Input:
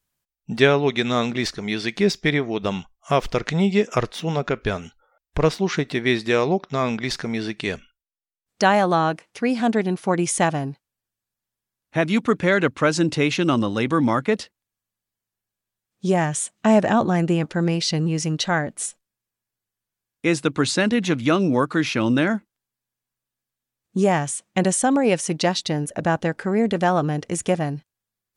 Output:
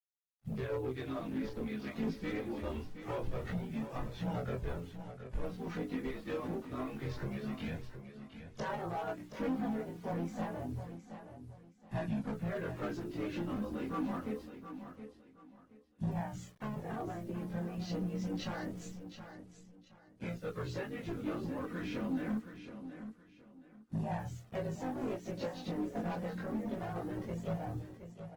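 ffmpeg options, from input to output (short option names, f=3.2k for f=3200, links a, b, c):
-filter_complex "[0:a]afftfilt=real='re':imag='-im':win_size=2048:overlap=0.75,lowpass=f=1.1k:p=1,lowshelf=f=120:g=12,bandreject=f=60:t=h:w=6,bandreject=f=120:t=h:w=6,bandreject=f=180:t=h:w=6,bandreject=f=240:t=h:w=6,bandreject=f=300:t=h:w=6,bandreject=f=360:t=h:w=6,bandreject=f=420:t=h:w=6,acompressor=threshold=-33dB:ratio=8,flanger=delay=15.5:depth=3.8:speed=1.1,aresample=16000,volume=34.5dB,asoftclip=hard,volume=-34.5dB,aresample=44100,acrusher=bits=10:mix=0:aa=0.000001,asplit=3[a][b][c];[b]asetrate=29433,aresample=44100,atempo=1.49831,volume=-10dB[d];[c]asetrate=52444,aresample=44100,atempo=0.840896,volume=-13dB[e];[a][d][e]amix=inputs=3:normalize=0,flanger=delay=1.1:depth=3:regen=-21:speed=0.25:shape=sinusoidal,aecho=1:1:722|1444|2166:0.299|0.0806|0.0218,volume=5dB" -ar 48000 -c:a libopus -b:a 20k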